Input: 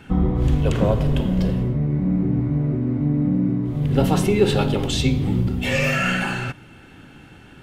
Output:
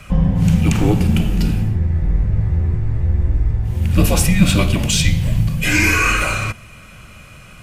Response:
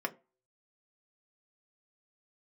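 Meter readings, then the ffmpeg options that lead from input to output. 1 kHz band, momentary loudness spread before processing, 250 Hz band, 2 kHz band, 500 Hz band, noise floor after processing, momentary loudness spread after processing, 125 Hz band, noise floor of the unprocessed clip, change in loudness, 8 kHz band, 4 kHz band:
+3.0 dB, 4 LU, +1.0 dB, +7.0 dB, -3.5 dB, -40 dBFS, 6 LU, +4.5 dB, -46 dBFS, +4.0 dB, +12.5 dB, +5.5 dB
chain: -af "equalizer=f=2.1k:w=6.5:g=-5.5,aexciter=amount=1.3:drive=7.6:freq=2k,afreqshift=-230,volume=4.5dB"

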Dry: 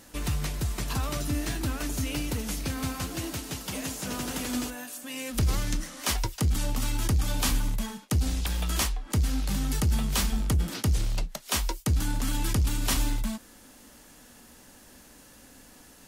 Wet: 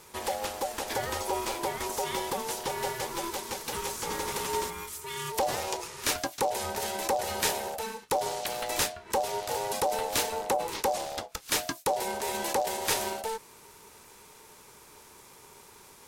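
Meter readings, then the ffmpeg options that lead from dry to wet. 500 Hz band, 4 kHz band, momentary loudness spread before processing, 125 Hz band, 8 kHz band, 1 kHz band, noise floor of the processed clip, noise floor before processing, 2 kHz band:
+9.0 dB, 0.0 dB, 6 LU, -18.5 dB, 0.0 dB, +8.5 dB, -54 dBFS, -53 dBFS, +1.5 dB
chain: -af "highpass=96,aeval=exprs='val(0)*sin(2*PI*670*n/s)':c=same,volume=3dB"

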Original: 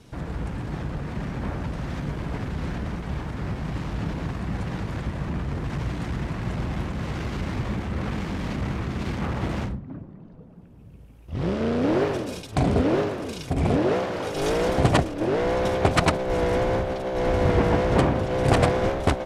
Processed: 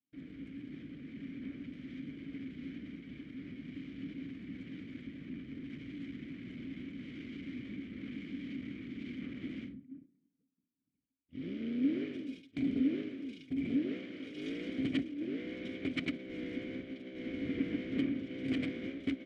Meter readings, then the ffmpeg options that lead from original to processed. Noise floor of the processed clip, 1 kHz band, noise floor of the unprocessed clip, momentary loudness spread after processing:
-81 dBFS, under -30 dB, -46 dBFS, 12 LU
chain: -filter_complex "[0:a]agate=range=-33dB:threshold=-31dB:ratio=3:detection=peak,asplit=3[a][b][c];[a]bandpass=f=270:t=q:w=8,volume=0dB[d];[b]bandpass=f=2.29k:t=q:w=8,volume=-6dB[e];[c]bandpass=f=3.01k:t=q:w=8,volume=-9dB[f];[d][e][f]amix=inputs=3:normalize=0,volume=-2dB"

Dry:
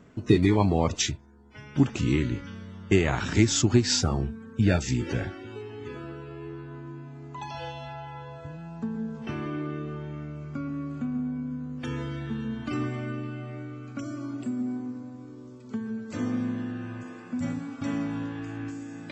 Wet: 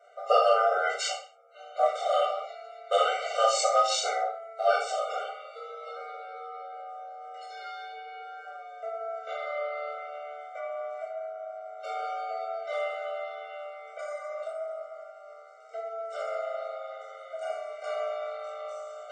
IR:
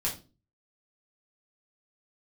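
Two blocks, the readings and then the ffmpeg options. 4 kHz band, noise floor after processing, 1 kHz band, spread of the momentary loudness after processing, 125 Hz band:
-2.0 dB, -48 dBFS, +9.5 dB, 17 LU, under -40 dB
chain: -filter_complex "[0:a]aeval=exprs='val(0)*sin(2*PI*890*n/s)':c=same[a];[1:a]atrim=start_sample=2205,afade=t=out:st=0.23:d=0.01,atrim=end_sample=10584,asetrate=26901,aresample=44100[b];[a][b]afir=irnorm=-1:irlink=0,afftfilt=real='re*eq(mod(floor(b*sr/1024/390),2),1)':imag='im*eq(mod(floor(b*sr/1024/390),2),1)':win_size=1024:overlap=0.75,volume=-6dB"

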